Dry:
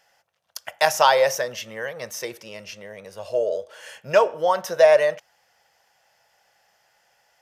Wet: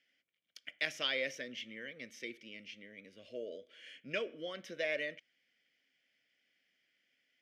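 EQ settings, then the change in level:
formant filter i
+3.0 dB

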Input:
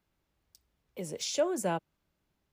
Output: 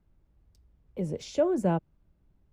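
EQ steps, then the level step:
spectral tilt −4 dB per octave
0.0 dB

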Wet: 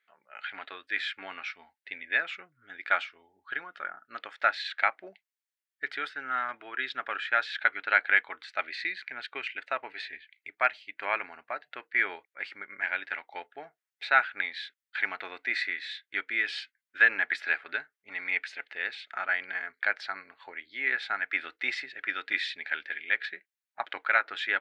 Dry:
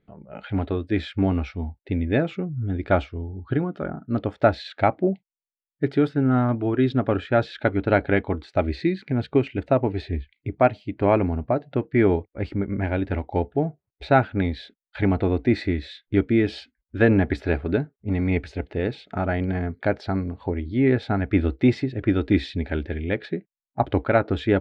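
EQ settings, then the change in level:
high-pass with resonance 1,700 Hz, resonance Q 2.1
0.0 dB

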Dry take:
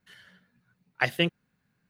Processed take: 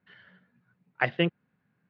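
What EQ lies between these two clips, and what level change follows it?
Gaussian smoothing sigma 2.9 samples
high-pass filter 100 Hz
+1.5 dB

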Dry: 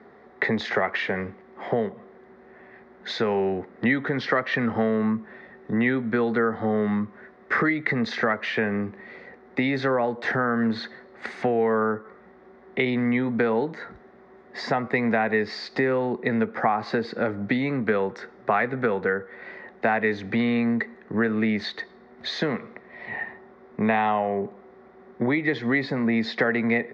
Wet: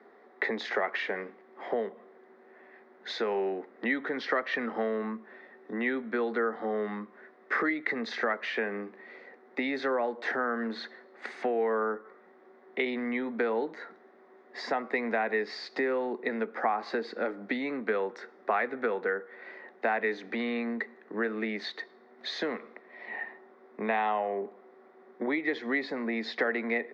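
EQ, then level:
high-pass filter 260 Hz 24 dB per octave
−5.5 dB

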